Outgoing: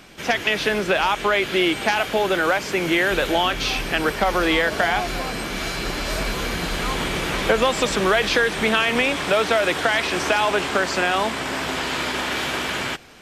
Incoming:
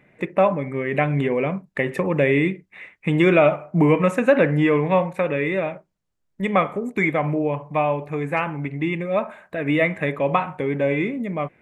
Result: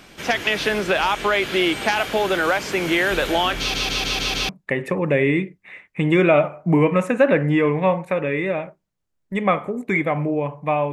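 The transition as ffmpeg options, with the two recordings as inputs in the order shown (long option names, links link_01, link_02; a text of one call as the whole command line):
ffmpeg -i cue0.wav -i cue1.wav -filter_complex "[0:a]apad=whole_dur=10.92,atrim=end=10.92,asplit=6[link_01][link_02][link_03][link_04][link_05][link_06];[link_01]atrim=end=3.742[link_07];[link_02]atrim=start=3.588:end=3.742[link_08];[link_03]atrim=start=3.588:end=3.742[link_09];[link_04]atrim=start=3.588:end=3.742[link_10];[link_05]atrim=start=3.588:end=3.742[link_11];[link_06]atrim=start=3.588:end=3.742[link_12];[1:a]atrim=start=1.568:end=8[link_13];[link_07][link_08]acrossfade=duration=0.004:curve1=hsin:curve2=hsin[link_14];[link_14][link_09]acrossfade=duration=0.004:curve1=hsin:curve2=hsin[link_15];[link_15][link_10]acrossfade=duration=0.004:curve1=hsin:curve2=hsin[link_16];[link_16][link_11]acrossfade=duration=0.004:curve1=hsin:curve2=hsin[link_17];[link_17][link_12]acrossfade=duration=0.004:curve1=hsin:curve2=hsin[link_18];[link_18][link_13]acrossfade=duration=0.004:curve1=hsin:curve2=hsin" out.wav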